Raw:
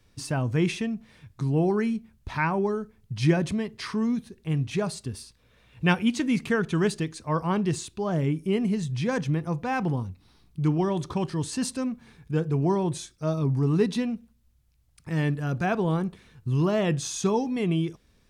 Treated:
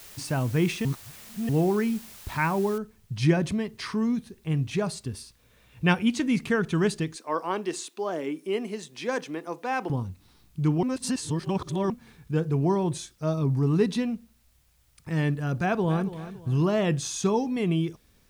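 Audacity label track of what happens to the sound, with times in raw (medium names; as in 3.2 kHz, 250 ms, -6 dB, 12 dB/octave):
0.850000	1.490000	reverse
2.780000	2.780000	noise floor step -47 dB -69 dB
7.160000	9.900000	high-pass 290 Hz 24 dB/octave
10.830000	11.900000	reverse
15.550000	16.080000	echo throw 280 ms, feedback 35%, level -13 dB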